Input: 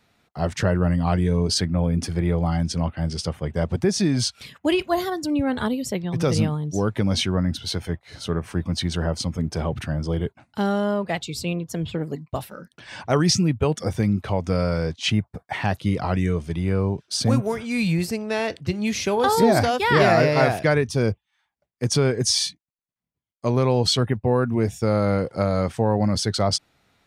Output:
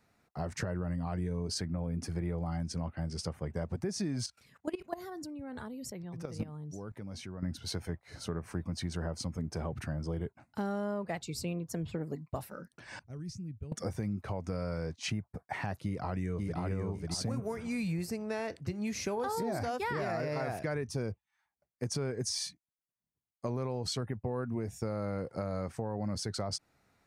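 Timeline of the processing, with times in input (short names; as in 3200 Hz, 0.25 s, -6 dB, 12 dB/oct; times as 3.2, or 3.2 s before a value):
4.26–7.43 level quantiser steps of 18 dB
12.99–13.72 passive tone stack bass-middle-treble 10-0-1
15.84–16.6 echo throw 0.54 s, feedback 25%, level -2.5 dB
whole clip: bell 3300 Hz -10 dB 0.64 oct; limiter -12.5 dBFS; compressor 3:1, threshold -27 dBFS; gain -6 dB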